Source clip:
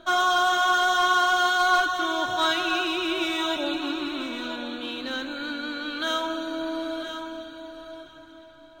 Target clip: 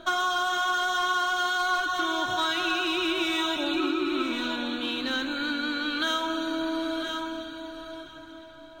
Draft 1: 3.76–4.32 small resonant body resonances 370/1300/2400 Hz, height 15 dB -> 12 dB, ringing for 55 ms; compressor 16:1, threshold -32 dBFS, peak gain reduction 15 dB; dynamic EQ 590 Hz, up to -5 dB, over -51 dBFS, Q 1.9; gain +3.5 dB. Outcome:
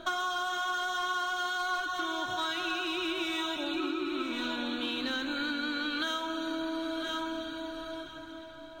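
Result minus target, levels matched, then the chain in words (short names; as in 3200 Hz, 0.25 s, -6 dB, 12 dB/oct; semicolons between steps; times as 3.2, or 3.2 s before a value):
compressor: peak gain reduction +6 dB
3.76–4.32 small resonant body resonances 370/1300/2400 Hz, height 15 dB -> 12 dB, ringing for 55 ms; compressor 16:1, threshold -25.5 dBFS, peak gain reduction 9 dB; dynamic EQ 590 Hz, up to -5 dB, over -51 dBFS, Q 1.9; gain +3.5 dB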